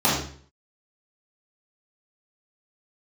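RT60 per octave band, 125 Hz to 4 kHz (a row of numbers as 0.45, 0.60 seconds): 0.60, 0.55, 0.50, 0.45, 0.50, 0.45 seconds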